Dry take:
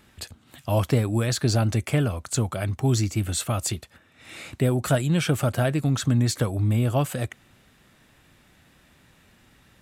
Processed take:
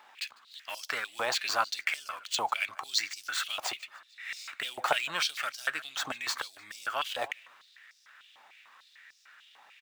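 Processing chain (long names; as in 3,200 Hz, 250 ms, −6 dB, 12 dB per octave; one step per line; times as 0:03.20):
running median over 5 samples
parametric band 12,000 Hz −5 dB 0.42 octaves
on a send: repeating echo 149 ms, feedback 51%, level −23.5 dB
on the sum: high-pass on a step sequencer 6.7 Hz 840–5,300 Hz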